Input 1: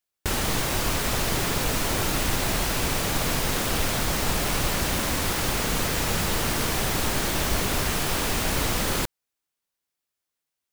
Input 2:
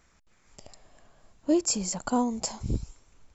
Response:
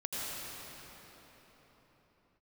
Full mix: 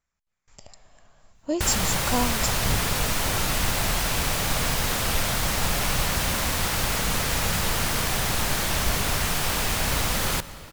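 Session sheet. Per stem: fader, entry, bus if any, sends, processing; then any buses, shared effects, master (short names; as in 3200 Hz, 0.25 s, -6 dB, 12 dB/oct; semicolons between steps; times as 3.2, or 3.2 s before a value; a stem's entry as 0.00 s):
+0.5 dB, 1.35 s, send -18.5 dB, vibrato 0.95 Hz 8.9 cents
+2.5 dB, 0.00 s, no send, gate with hold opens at -50 dBFS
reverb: on, RT60 4.5 s, pre-delay 76 ms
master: bell 330 Hz -7 dB 1.1 oct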